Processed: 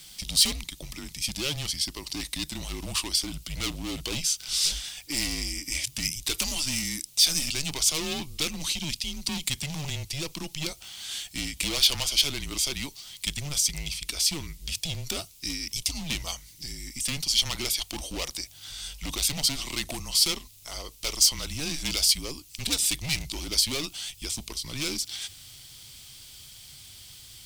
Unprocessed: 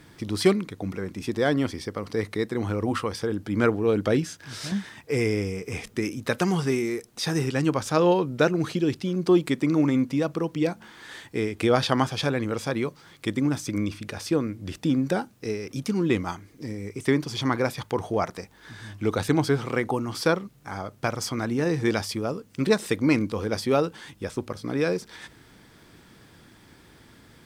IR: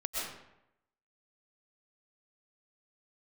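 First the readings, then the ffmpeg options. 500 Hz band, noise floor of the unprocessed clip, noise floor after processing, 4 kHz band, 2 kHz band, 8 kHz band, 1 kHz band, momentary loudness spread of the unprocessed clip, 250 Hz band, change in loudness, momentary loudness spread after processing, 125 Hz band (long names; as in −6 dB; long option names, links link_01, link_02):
−17.5 dB, −54 dBFS, −51 dBFS, +11.0 dB, −3.5 dB, +13.5 dB, −12.5 dB, 11 LU, −13.5 dB, −1.0 dB, 16 LU, −9.0 dB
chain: -af "asubboost=boost=5.5:cutoff=74,asoftclip=type=hard:threshold=-24dB,afreqshift=-150,aexciter=amount=5.4:drive=9:freq=2400,volume=-7.5dB"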